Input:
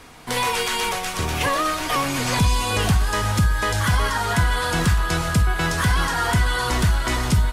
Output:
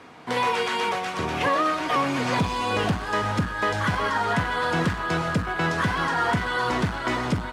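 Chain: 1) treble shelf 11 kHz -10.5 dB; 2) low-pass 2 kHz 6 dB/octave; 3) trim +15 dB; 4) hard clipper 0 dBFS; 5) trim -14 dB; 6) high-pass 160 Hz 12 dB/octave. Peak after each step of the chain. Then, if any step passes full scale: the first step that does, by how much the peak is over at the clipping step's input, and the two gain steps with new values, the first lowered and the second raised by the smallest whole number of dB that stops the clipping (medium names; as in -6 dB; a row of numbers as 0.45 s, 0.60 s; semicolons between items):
-9.0 dBFS, -9.5 dBFS, +5.5 dBFS, 0.0 dBFS, -14.0 dBFS, -10.5 dBFS; step 3, 5.5 dB; step 3 +9 dB, step 5 -8 dB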